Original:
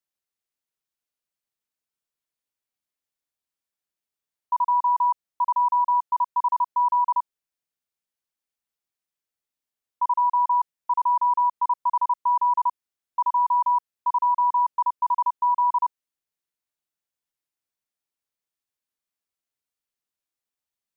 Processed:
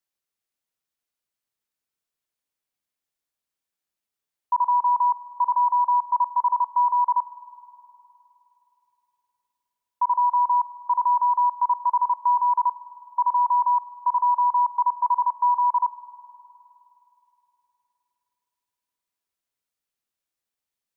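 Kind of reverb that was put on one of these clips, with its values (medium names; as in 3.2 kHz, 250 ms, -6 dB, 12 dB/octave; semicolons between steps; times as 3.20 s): spring tank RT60 3.2 s, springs 51 ms, chirp 55 ms, DRR 13.5 dB; trim +1.5 dB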